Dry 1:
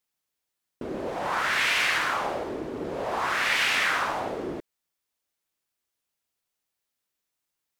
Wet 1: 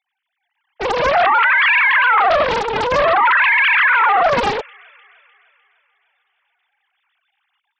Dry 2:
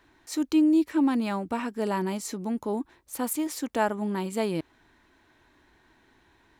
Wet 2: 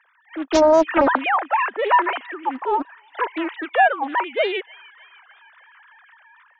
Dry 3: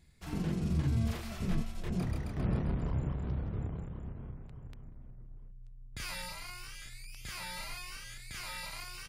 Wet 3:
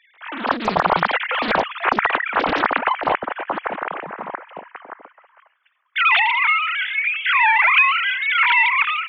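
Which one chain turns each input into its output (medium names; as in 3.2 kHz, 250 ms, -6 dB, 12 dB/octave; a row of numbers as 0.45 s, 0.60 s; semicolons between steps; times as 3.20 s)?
formants replaced by sine waves; high-pass 1.2 kHz 12 dB/octave; level rider gain up to 10 dB; treble shelf 2.4 kHz -10 dB; peak limiter -27.5 dBFS; feedback echo behind a high-pass 302 ms, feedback 53%, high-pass 2.7 kHz, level -15 dB; loudspeaker Doppler distortion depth 0.97 ms; peak normalisation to -6 dBFS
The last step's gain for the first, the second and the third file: +21.0 dB, +21.5 dB, +21.0 dB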